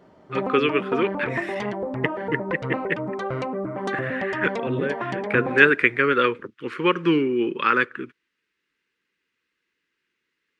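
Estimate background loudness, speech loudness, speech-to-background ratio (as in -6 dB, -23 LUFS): -29.5 LUFS, -23.0 LUFS, 6.5 dB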